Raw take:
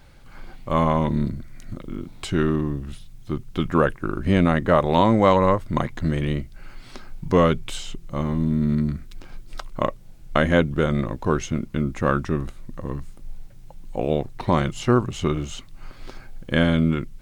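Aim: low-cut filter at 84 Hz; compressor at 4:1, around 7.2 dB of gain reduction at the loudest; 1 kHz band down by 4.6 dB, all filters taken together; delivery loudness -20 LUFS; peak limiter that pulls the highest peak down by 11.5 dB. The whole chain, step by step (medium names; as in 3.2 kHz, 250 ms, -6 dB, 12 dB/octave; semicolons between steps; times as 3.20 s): high-pass 84 Hz; peaking EQ 1 kHz -5.5 dB; compression 4:1, threshold -22 dBFS; trim +12 dB; peak limiter -7 dBFS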